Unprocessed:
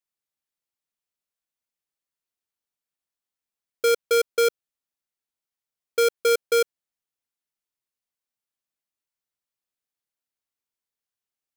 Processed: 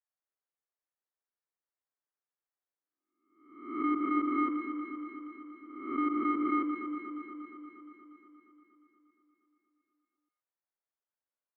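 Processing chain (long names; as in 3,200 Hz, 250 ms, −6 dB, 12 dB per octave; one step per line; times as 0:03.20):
peak hold with a rise ahead of every peak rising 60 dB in 0.75 s
delay that swaps between a low-pass and a high-pass 118 ms, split 1,400 Hz, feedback 82%, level −5 dB
single-sideband voice off tune −170 Hz 510–2,100 Hz
level −6 dB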